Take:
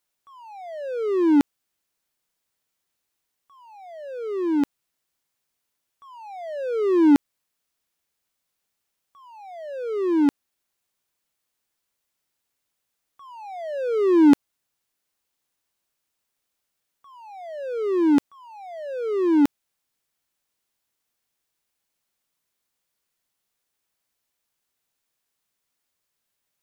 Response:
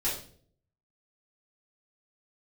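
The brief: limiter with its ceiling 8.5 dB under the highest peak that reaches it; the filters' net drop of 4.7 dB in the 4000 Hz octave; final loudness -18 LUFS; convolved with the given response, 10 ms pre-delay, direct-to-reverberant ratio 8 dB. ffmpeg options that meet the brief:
-filter_complex "[0:a]equalizer=f=4k:t=o:g=-6.5,alimiter=limit=-14.5dB:level=0:latency=1,asplit=2[a][b];[1:a]atrim=start_sample=2205,adelay=10[c];[b][c]afir=irnorm=-1:irlink=0,volume=-14.5dB[d];[a][d]amix=inputs=2:normalize=0,volume=5.5dB"

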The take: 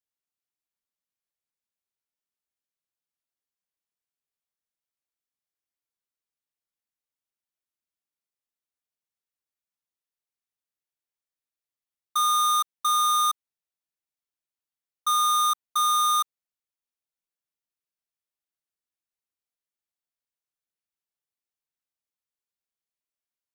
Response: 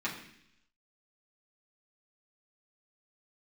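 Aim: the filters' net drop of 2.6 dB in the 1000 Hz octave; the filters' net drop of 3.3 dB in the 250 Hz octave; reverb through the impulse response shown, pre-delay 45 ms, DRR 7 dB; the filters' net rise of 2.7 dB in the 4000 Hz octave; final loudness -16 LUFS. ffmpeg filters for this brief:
-filter_complex "[0:a]equalizer=f=250:t=o:g=-4.5,equalizer=f=1k:t=o:g=-3.5,equalizer=f=4k:t=o:g=3,asplit=2[a][b];[1:a]atrim=start_sample=2205,adelay=45[c];[b][c]afir=irnorm=-1:irlink=0,volume=-13dB[d];[a][d]amix=inputs=2:normalize=0,volume=8.5dB"

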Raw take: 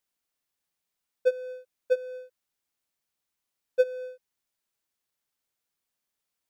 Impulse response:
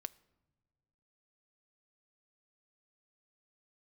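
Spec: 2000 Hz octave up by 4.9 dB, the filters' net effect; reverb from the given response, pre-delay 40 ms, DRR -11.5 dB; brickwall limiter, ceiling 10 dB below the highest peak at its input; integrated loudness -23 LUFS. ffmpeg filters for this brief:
-filter_complex "[0:a]equalizer=f=2k:t=o:g=8,alimiter=limit=-20dB:level=0:latency=1,asplit=2[a][b];[1:a]atrim=start_sample=2205,adelay=40[c];[b][c]afir=irnorm=-1:irlink=0,volume=15dB[d];[a][d]amix=inputs=2:normalize=0,volume=2dB"

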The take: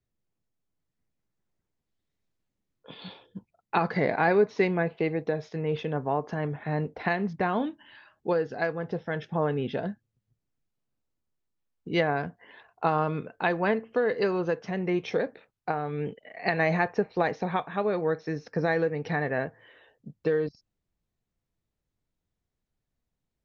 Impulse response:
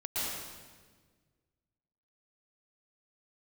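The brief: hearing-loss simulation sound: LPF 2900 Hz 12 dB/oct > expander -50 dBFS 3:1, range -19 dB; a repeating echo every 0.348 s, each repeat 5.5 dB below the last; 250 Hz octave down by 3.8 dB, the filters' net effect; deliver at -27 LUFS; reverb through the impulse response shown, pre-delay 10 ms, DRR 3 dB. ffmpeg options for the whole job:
-filter_complex "[0:a]equalizer=f=250:t=o:g=-6.5,aecho=1:1:348|696|1044|1392|1740|2088|2436:0.531|0.281|0.149|0.079|0.0419|0.0222|0.0118,asplit=2[a][b];[1:a]atrim=start_sample=2205,adelay=10[c];[b][c]afir=irnorm=-1:irlink=0,volume=-9dB[d];[a][d]amix=inputs=2:normalize=0,lowpass=2.9k,agate=range=-19dB:threshold=-50dB:ratio=3,volume=0.5dB"

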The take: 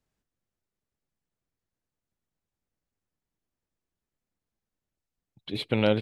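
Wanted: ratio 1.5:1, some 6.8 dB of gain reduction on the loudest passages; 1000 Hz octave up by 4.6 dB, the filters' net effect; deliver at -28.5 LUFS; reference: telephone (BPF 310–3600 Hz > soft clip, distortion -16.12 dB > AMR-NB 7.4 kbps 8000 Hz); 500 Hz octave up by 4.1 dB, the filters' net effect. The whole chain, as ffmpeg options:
-af "equalizer=f=500:t=o:g=4,equalizer=f=1k:t=o:g=5,acompressor=threshold=-33dB:ratio=1.5,highpass=310,lowpass=3.6k,asoftclip=threshold=-20dB,volume=7dB" -ar 8000 -c:a libopencore_amrnb -b:a 7400

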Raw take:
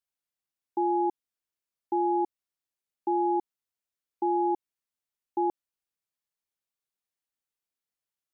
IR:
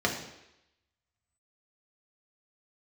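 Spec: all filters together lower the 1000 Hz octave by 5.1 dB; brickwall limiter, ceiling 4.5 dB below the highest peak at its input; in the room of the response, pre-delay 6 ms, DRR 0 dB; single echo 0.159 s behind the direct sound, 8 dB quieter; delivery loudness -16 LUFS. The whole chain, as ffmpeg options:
-filter_complex "[0:a]equalizer=f=1k:t=o:g=-6.5,alimiter=level_in=2.5dB:limit=-24dB:level=0:latency=1,volume=-2.5dB,aecho=1:1:159:0.398,asplit=2[a][b];[1:a]atrim=start_sample=2205,adelay=6[c];[b][c]afir=irnorm=-1:irlink=0,volume=-11dB[d];[a][d]amix=inputs=2:normalize=0,volume=18dB"

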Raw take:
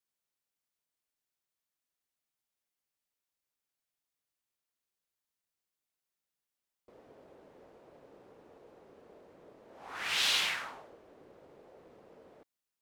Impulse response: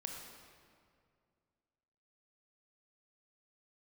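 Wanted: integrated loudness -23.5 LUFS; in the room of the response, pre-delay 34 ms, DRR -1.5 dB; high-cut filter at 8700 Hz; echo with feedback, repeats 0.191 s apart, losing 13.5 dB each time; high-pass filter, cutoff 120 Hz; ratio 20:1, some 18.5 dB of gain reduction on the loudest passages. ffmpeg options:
-filter_complex "[0:a]highpass=120,lowpass=8.7k,acompressor=threshold=-44dB:ratio=20,aecho=1:1:191|382:0.211|0.0444,asplit=2[a][b];[1:a]atrim=start_sample=2205,adelay=34[c];[b][c]afir=irnorm=-1:irlink=0,volume=3dB[d];[a][d]amix=inputs=2:normalize=0,volume=25.5dB"

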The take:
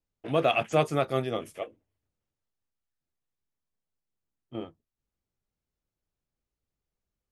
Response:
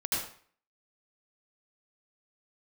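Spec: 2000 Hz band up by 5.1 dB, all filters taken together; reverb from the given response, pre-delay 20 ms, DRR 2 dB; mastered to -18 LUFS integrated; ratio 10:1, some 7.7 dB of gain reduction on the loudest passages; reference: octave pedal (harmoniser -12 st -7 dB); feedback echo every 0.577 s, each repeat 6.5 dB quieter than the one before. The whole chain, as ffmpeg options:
-filter_complex "[0:a]equalizer=f=2k:t=o:g=7.5,acompressor=threshold=-25dB:ratio=10,aecho=1:1:577|1154|1731|2308|2885|3462:0.473|0.222|0.105|0.0491|0.0231|0.0109,asplit=2[a][b];[1:a]atrim=start_sample=2205,adelay=20[c];[b][c]afir=irnorm=-1:irlink=0,volume=-9dB[d];[a][d]amix=inputs=2:normalize=0,asplit=2[e][f];[f]asetrate=22050,aresample=44100,atempo=2,volume=-7dB[g];[e][g]amix=inputs=2:normalize=0,volume=14dB"

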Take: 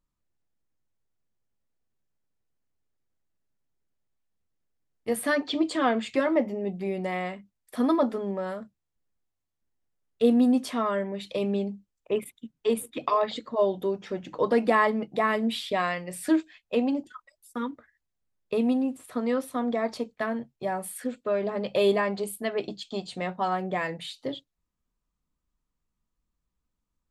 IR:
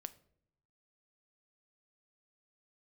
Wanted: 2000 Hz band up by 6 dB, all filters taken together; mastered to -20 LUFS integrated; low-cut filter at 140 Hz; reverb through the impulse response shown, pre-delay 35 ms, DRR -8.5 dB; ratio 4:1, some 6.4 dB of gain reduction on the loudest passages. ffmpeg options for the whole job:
-filter_complex "[0:a]highpass=140,equalizer=f=2k:t=o:g=7,acompressor=threshold=-24dB:ratio=4,asplit=2[a][b];[1:a]atrim=start_sample=2205,adelay=35[c];[b][c]afir=irnorm=-1:irlink=0,volume=13dB[d];[a][d]amix=inputs=2:normalize=0,volume=1dB"

